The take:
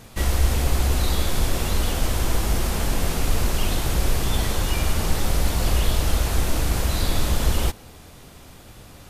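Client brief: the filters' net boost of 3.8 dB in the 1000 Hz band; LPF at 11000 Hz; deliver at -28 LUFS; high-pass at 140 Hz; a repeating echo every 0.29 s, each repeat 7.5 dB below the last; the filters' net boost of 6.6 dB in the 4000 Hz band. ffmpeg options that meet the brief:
-af "highpass=140,lowpass=11k,equalizer=f=1k:t=o:g=4.5,equalizer=f=4k:t=o:g=8,aecho=1:1:290|580|870|1160|1450:0.422|0.177|0.0744|0.0312|0.0131,volume=-4.5dB"

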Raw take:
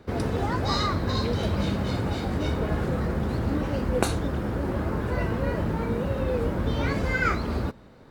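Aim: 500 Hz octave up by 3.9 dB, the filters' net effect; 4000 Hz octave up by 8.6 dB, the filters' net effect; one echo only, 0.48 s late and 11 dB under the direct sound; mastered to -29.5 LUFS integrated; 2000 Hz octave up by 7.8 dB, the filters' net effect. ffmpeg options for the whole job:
-af "equalizer=f=500:t=o:g=4,equalizer=f=2k:t=o:g=8.5,equalizer=f=4k:t=o:g=7.5,aecho=1:1:480:0.282,volume=-6dB"

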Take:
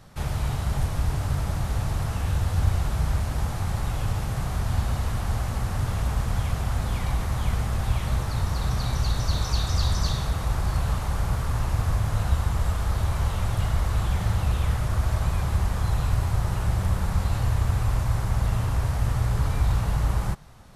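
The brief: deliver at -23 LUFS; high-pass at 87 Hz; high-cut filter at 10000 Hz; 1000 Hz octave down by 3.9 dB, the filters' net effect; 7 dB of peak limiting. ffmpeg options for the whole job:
-af "highpass=87,lowpass=10k,equalizer=f=1k:t=o:g=-5,volume=8dB,alimiter=limit=-13dB:level=0:latency=1"

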